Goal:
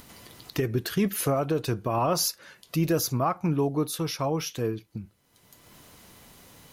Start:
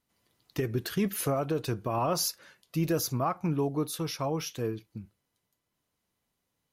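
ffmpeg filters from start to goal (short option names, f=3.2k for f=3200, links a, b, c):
-af "acompressor=mode=upward:threshold=-34dB:ratio=2.5,volume=3.5dB"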